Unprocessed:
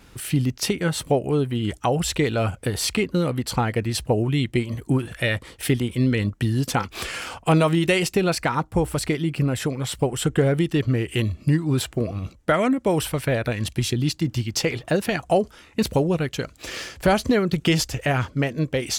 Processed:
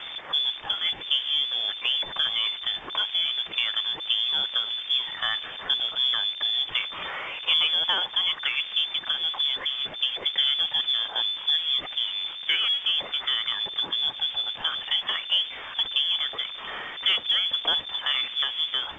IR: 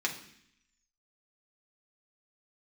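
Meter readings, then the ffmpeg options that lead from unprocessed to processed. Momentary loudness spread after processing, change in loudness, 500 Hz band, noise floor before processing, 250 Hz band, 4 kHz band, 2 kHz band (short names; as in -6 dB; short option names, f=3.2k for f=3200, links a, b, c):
5 LU, -1.0 dB, -22.5 dB, -51 dBFS, under -30 dB, +11.5 dB, -2.5 dB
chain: -af "aeval=exprs='val(0)+0.5*0.0596*sgn(val(0))':c=same,lowpass=f=3.1k:t=q:w=0.5098,lowpass=f=3.1k:t=q:w=0.6013,lowpass=f=3.1k:t=q:w=0.9,lowpass=f=3.1k:t=q:w=2.563,afreqshift=-3600,volume=-6.5dB" -ar 16000 -c:a pcm_alaw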